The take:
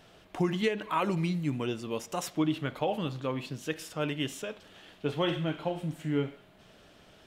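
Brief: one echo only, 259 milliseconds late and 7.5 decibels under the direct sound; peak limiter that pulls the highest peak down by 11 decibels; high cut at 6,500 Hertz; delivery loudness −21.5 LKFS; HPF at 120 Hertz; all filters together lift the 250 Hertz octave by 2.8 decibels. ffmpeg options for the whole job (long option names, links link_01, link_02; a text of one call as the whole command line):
ffmpeg -i in.wav -af "highpass=120,lowpass=6500,equalizer=frequency=250:width_type=o:gain=4.5,alimiter=level_in=1.5dB:limit=-24dB:level=0:latency=1,volume=-1.5dB,aecho=1:1:259:0.422,volume=13.5dB" out.wav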